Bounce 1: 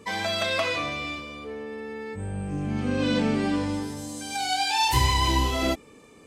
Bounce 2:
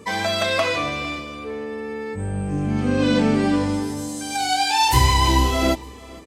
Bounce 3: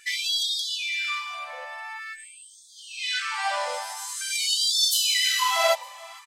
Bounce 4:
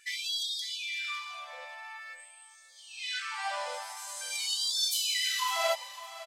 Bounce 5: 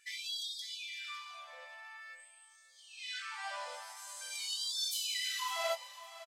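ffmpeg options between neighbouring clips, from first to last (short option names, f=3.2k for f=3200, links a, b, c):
-af "equalizer=f=3k:t=o:w=1.4:g=-3,aecho=1:1:456|912:0.0794|0.0238,volume=6dB"
-af "afftfilt=real='re*gte(b*sr/1024,510*pow(3300/510,0.5+0.5*sin(2*PI*0.47*pts/sr)))':imag='im*gte(b*sr/1024,510*pow(3300/510,0.5+0.5*sin(2*PI*0.47*pts/sr)))':win_size=1024:overlap=0.75,volume=2.5dB"
-af "aecho=1:1:558|1116:0.168|0.0353,volume=-7.5dB"
-filter_complex "[0:a]asplit=2[a][b];[b]adelay=21,volume=-10dB[c];[a][c]amix=inputs=2:normalize=0,volume=-7dB"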